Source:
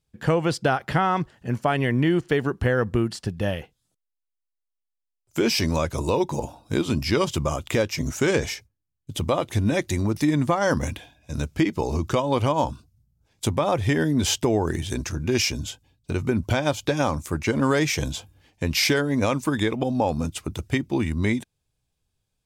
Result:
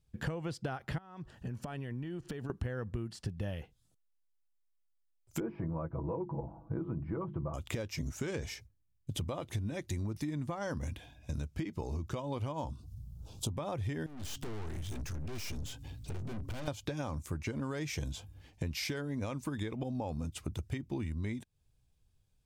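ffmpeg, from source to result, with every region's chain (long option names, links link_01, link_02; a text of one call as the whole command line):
ffmpeg -i in.wav -filter_complex "[0:a]asettb=1/sr,asplit=3[link_01][link_02][link_03];[link_01]atrim=end=0.984[link_04];[link_02]atrim=start=0.98:end=2.5,asetpts=PTS-STARTPTS,afade=type=in:duration=0.004:curve=qsin,afade=type=out:start_time=1.516:duration=0.004:curve=qsin,bandreject=frequency=2100:width=10,acompressor=threshold=-35dB:ratio=12:attack=3.2:release=140:knee=1:detection=peak[link_05];[link_03]atrim=start=2.496[link_06];[link_04][link_05]acrossfade=duration=0.004:curve1=hsin:curve2=qsin[link_07];[link_07][link_06]acrossfade=duration=0.004:curve1=qsin:curve2=hsin,asettb=1/sr,asplit=3[link_08][link_09][link_10];[link_08]atrim=end=5.404[link_11];[link_09]atrim=start=5.4:end=7.54,asetpts=PTS-STARTPTS,afade=type=in:duration=0.004:curve=qsin,afade=type=out:start_time=2.136:duration=0.004:curve=qsin,lowpass=frequency=1300:width=0.5412,lowpass=frequency=1300:width=1.3066,bandreject=frequency=50:width_type=h:width=6,bandreject=frequency=100:width_type=h:width=6,bandreject=frequency=150:width_type=h:width=6,bandreject=frequency=200:width_type=h:width=6,bandreject=frequency=250:width_type=h:width=6,bandreject=frequency=300:width_type=h:width=6,bandreject=frequency=350:width_type=h:width=6,bandreject=frequency=400:width_type=h:width=6,aecho=1:1:6.1:0.6,atrim=end_sample=94374[link_12];[link_10]atrim=start=7.536[link_13];[link_11][link_12]acrossfade=duration=0.004:curve1=hsin:curve2=qsin[link_14];[link_14][link_13]acrossfade=duration=0.004:curve1=qsin:curve2=hsin,asettb=1/sr,asplit=3[link_15][link_16][link_17];[link_15]atrim=end=12.664[link_18];[link_16]atrim=start=12.66:end=13.55,asetpts=PTS-STARTPTS,afade=type=in:duration=0.004:curve=qsin,afade=type=out:start_time=0.886:duration=0.004:curve=qsin,asuperstop=centerf=1900:order=4:qfactor=1.2,acompressor=mode=upward:threshold=-37dB:ratio=2.5:attack=3.2:release=140:knee=2.83:detection=peak[link_19];[link_17]atrim=start=13.546[link_20];[link_18][link_19]acrossfade=duration=0.004:curve1=hsin:curve2=qsin[link_21];[link_21][link_20]acrossfade=duration=0.004:curve1=qsin:curve2=hsin,asettb=1/sr,asplit=3[link_22][link_23][link_24];[link_22]atrim=end=14.064[link_25];[link_23]atrim=start=14.06:end=16.68,asetpts=PTS-STARTPTS,afade=type=in:duration=0.004:curve=qsin,afade=type=out:start_time=2.616:duration=0.004:curve=qsin,bandreject=frequency=138:width_type=h:width=4,bandreject=frequency=276:width_type=h:width=4,acompressor=mode=upward:threshold=-30dB:ratio=2.5:attack=3.2:release=140:knee=2.83:detection=peak,aeval=exprs='(tanh(70.8*val(0)+0.4)-tanh(0.4))/70.8':channel_layout=same[link_26];[link_24]atrim=start=16.676[link_27];[link_25][link_26]acrossfade=duration=0.004:curve1=hsin:curve2=qsin[link_28];[link_28][link_27]acrossfade=duration=0.004:curve1=qsin:curve2=hsin,lowshelf=frequency=150:gain=10.5,acompressor=threshold=-32dB:ratio=6,volume=-3dB" out.wav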